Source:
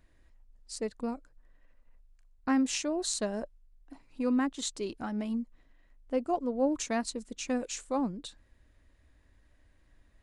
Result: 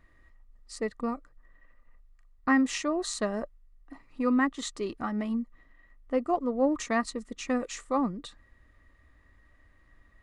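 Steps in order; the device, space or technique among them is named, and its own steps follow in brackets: inside a helmet (treble shelf 3.9 kHz -7 dB; small resonant body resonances 1.2/1.9 kHz, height 14 dB, ringing for 30 ms); trim +2.5 dB

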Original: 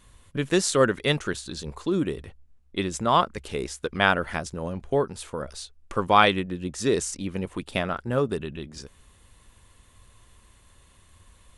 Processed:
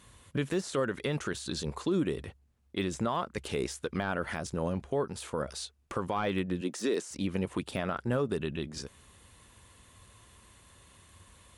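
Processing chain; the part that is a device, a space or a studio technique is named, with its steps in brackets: 6.61–7.11 s: high-pass 220 Hz 24 dB/octave; podcast mastering chain (high-pass 73 Hz 12 dB/octave; de-esser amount 80%; compression 2:1, threshold -28 dBFS, peak gain reduction 8 dB; peak limiter -21.5 dBFS, peak gain reduction 8 dB; trim +1.5 dB; MP3 96 kbps 48 kHz)

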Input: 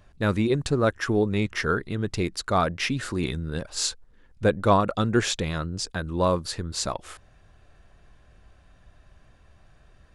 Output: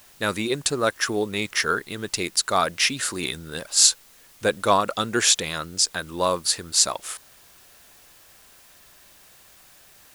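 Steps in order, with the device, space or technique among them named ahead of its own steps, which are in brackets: turntable without a phono preamp (RIAA curve recording; white noise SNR 27 dB); trim +2 dB

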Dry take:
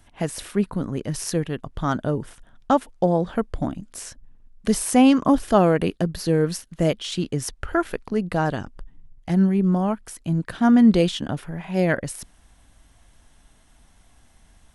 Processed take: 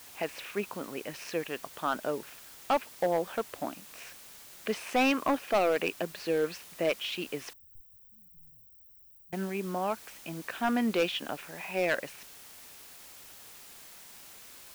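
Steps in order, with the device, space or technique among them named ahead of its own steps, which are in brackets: drive-through speaker (band-pass 450–3300 Hz; peaking EQ 2.5 kHz +11 dB 0.36 oct; hard clipper -17 dBFS, distortion -11 dB; white noise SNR 17 dB); 7.53–9.33 s: inverse Chebyshev band-stop 440–7100 Hz, stop band 70 dB; trim -3.5 dB

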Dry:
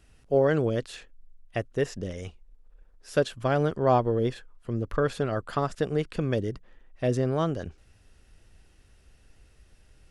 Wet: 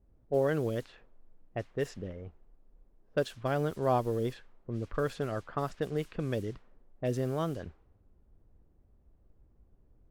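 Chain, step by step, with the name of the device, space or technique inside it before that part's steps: cassette deck with a dynamic noise filter (white noise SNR 23 dB; level-controlled noise filter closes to 300 Hz, open at -22 dBFS); trim -6 dB

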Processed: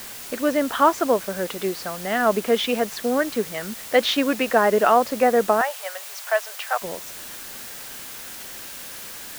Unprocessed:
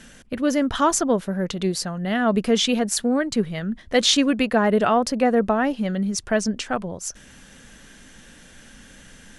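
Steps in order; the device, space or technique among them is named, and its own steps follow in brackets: wax cylinder (band-pass 390–2400 Hz; wow and flutter 23 cents; white noise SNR 14 dB); 5.61–6.82 s: steep high-pass 600 Hz 36 dB/octave; trim +3.5 dB

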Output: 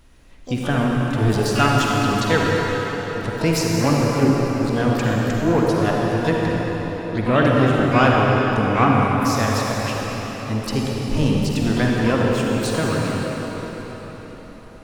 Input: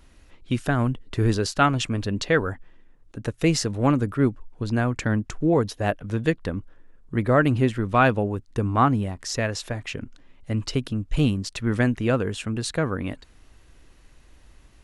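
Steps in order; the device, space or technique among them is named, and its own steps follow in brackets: shimmer-style reverb (harmony voices +12 st -10 dB; reverberation RT60 5.1 s, pre-delay 43 ms, DRR -3 dB)

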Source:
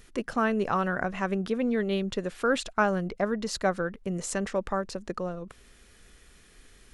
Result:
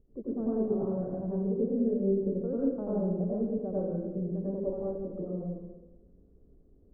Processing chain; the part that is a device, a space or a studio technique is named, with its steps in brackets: next room (low-pass 550 Hz 24 dB/octave; reverberation RT60 1.0 s, pre-delay 85 ms, DRR -7 dB); trim -9 dB

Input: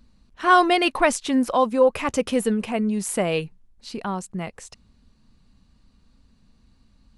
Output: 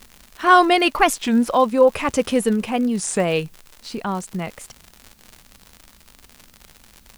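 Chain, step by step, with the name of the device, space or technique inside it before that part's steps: warped LP (warped record 33 1/3 rpm, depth 250 cents; crackle 120 per s -31 dBFS; white noise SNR 37 dB); trim +3 dB

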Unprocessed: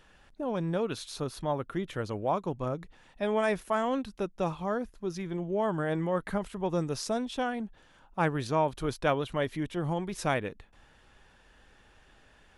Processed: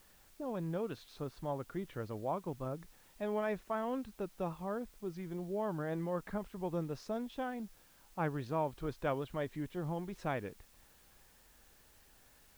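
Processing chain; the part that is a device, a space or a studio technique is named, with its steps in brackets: cassette deck with a dirty head (tape spacing loss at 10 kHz 21 dB; wow and flutter; white noise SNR 26 dB); trim -6.5 dB

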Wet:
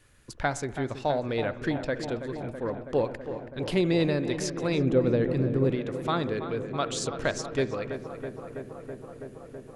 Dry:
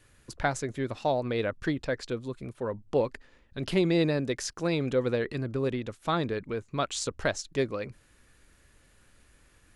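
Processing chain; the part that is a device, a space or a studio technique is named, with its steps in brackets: dub delay into a spring reverb (filtered feedback delay 327 ms, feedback 85%, low-pass 2.5 kHz, level -10.5 dB; spring tank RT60 1 s, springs 60 ms, chirp 55 ms, DRR 16 dB); 4.78–5.71 s: tilt shelf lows +5.5 dB, about 760 Hz

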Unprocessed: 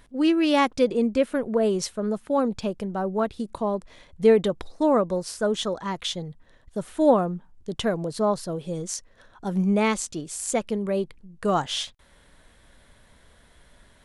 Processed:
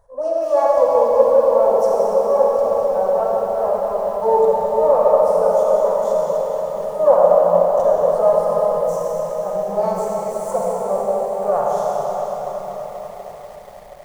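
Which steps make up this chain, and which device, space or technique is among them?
shimmer-style reverb (harmony voices +12 st -8 dB; reverberation RT60 5.3 s, pre-delay 34 ms, DRR -5.5 dB); FFT filter 120 Hz 0 dB, 310 Hz -20 dB, 540 Hz +13 dB, 1.1 kHz +2 dB, 2 kHz -17 dB, 3 kHz -25 dB, 5.9 kHz -7 dB; bit-crushed delay 242 ms, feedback 80%, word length 6-bit, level -12.5 dB; trim -5.5 dB

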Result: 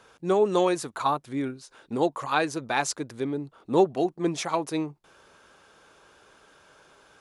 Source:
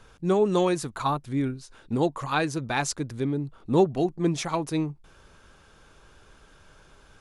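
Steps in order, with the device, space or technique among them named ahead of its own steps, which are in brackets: filter by subtraction (in parallel: low-pass 540 Hz 12 dB/octave + polarity flip)

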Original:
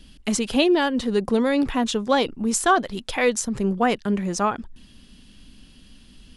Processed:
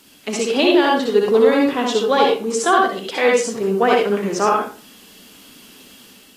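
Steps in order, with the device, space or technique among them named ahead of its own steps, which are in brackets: filmed off a television (band-pass 290–6500 Hz; peaking EQ 430 Hz +8 dB 0.36 oct; reverberation RT60 0.35 s, pre-delay 55 ms, DRR -1 dB; white noise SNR 32 dB; level rider gain up to 4 dB; AAC 48 kbps 32 kHz)

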